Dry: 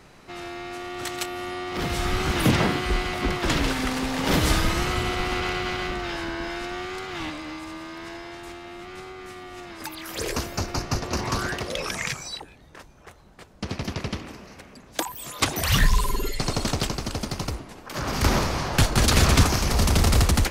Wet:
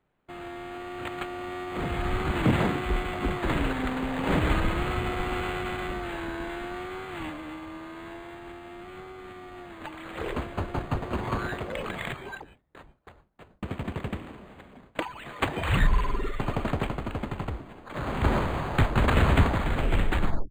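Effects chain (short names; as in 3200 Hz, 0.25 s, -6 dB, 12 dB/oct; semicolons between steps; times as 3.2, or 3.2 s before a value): tape stop at the end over 1.13 s; gate with hold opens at -37 dBFS; decimation joined by straight lines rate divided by 8×; gain -2.5 dB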